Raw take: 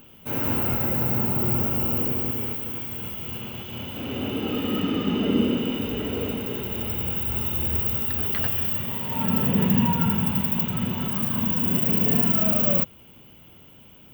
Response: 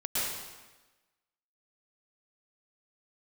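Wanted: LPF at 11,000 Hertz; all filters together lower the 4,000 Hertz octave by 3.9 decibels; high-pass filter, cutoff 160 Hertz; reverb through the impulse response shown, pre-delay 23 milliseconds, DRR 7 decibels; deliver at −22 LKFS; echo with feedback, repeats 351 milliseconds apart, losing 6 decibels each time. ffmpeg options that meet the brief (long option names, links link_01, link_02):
-filter_complex "[0:a]highpass=160,lowpass=11000,equalizer=frequency=4000:width_type=o:gain=-6.5,aecho=1:1:351|702|1053|1404|1755|2106:0.501|0.251|0.125|0.0626|0.0313|0.0157,asplit=2[link_01][link_02];[1:a]atrim=start_sample=2205,adelay=23[link_03];[link_02][link_03]afir=irnorm=-1:irlink=0,volume=-15dB[link_04];[link_01][link_04]amix=inputs=2:normalize=0,volume=6dB"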